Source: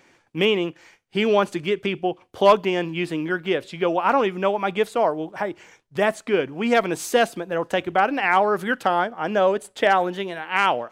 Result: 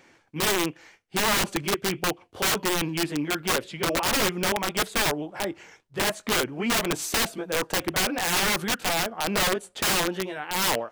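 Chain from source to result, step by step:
pitch shifter swept by a sawtooth −1 semitone, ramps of 180 ms
wrap-around overflow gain 18 dB

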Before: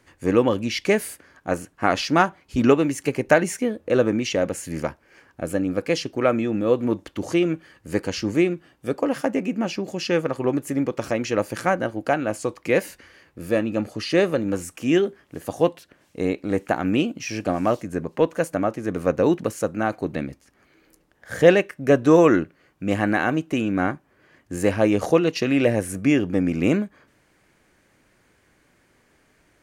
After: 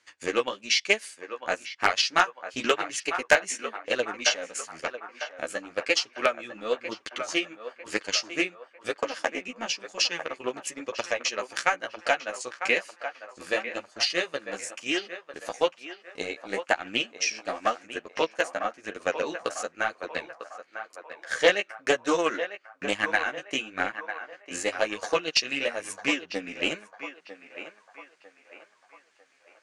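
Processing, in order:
meter weighting curve ITU-R 468
transient designer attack +11 dB, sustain −7 dB
flanger 1 Hz, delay 8.3 ms, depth 7.9 ms, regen +3%
in parallel at −6 dB: wrap-around overflow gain −0.5 dB
on the sum: high-frequency loss of the air 57 metres
on a send: feedback echo with a band-pass in the loop 949 ms, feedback 54%, band-pass 1,000 Hz, level −8.5 dB
on the sum: highs frequency-modulated by the lows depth 0.11 ms
level −9.5 dB

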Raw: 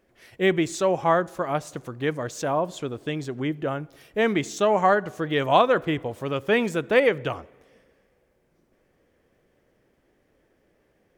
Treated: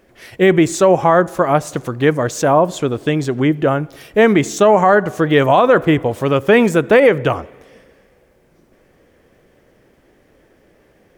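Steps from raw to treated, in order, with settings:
dynamic equaliser 3,800 Hz, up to −6 dB, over −42 dBFS, Q 0.86
boost into a limiter +13.5 dB
level −1 dB

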